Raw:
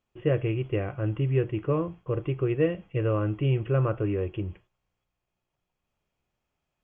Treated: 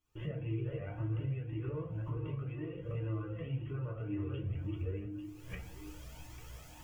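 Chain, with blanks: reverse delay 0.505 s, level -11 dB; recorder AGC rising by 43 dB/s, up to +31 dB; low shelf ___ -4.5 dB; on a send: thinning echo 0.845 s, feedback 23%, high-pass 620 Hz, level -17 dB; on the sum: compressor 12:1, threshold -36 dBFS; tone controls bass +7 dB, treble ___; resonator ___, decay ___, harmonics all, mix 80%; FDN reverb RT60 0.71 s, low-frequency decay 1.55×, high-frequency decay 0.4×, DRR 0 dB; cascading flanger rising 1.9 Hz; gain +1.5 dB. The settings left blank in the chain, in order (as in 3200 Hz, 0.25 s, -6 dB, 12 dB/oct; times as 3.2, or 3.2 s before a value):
470 Hz, +8 dB, 65 Hz, 0.19 s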